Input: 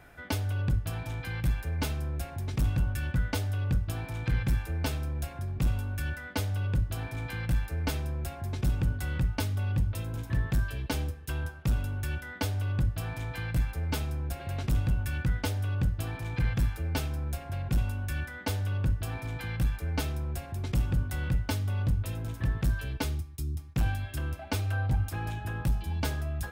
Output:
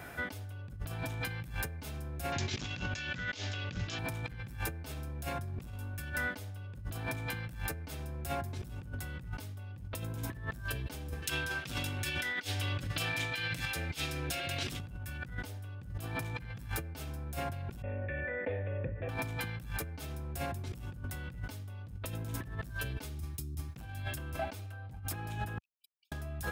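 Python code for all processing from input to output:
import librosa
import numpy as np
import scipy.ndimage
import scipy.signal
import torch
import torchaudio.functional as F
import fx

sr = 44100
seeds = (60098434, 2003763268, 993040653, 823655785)

y = fx.chain(x, sr, fx.weighting(curve='D'),
    fx.resample_bad(factor=3, down='none', up='filtered'), at=(2.32, 3.99))
y = fx.chain(y, sr, fx.weighting(curve='D'),
    fx.over_compress(threshold_db=-38.0, ratio=-0.5),
    fx.notch_comb(f0_hz=210.0), at=(11.22, 14.8))
y = fx.chain(y, sr, fx.formant_cascade(vowel='e'),
    fx.env_flatten(amount_pct=70), at=(17.82, 19.09))
y = fx.chain(y, sr, fx.envelope_sharpen(power=3.0),
    fx.over_compress(threshold_db=-37.0, ratio=-1.0),
    fx.brickwall_highpass(low_hz=2300.0), at=(25.58, 26.12))
y = scipy.signal.sosfilt(scipy.signal.butter(2, 77.0, 'highpass', fs=sr, output='sos'), y)
y = fx.high_shelf(y, sr, hz=8100.0, db=5.0)
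y = fx.over_compress(y, sr, threshold_db=-41.0, ratio=-1.0)
y = y * librosa.db_to_amplitude(1.5)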